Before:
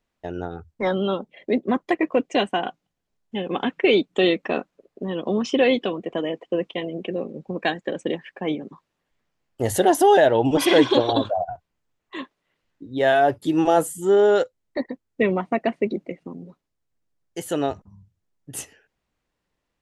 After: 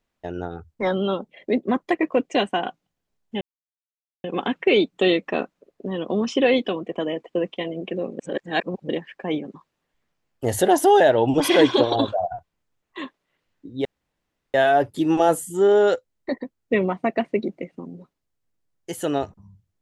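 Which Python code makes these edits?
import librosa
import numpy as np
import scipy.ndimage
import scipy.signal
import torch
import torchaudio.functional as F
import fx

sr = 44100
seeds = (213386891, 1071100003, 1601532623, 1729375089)

y = fx.edit(x, sr, fx.insert_silence(at_s=3.41, length_s=0.83),
    fx.reverse_span(start_s=7.36, length_s=0.7),
    fx.insert_room_tone(at_s=13.02, length_s=0.69), tone=tone)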